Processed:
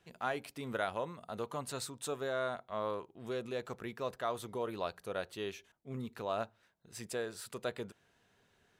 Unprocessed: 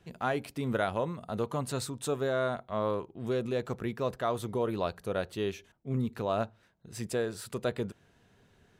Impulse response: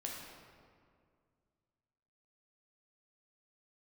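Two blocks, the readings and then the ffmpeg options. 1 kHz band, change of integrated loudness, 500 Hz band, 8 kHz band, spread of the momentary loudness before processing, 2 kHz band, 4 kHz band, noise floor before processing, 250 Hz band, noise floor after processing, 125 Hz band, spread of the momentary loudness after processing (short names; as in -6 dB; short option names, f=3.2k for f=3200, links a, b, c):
-4.5 dB, -6.5 dB, -6.5 dB, -3.0 dB, 5 LU, -3.5 dB, -3.0 dB, -66 dBFS, -9.5 dB, -73 dBFS, -12.0 dB, 7 LU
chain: -af "lowshelf=f=370:g=-10,volume=-3dB"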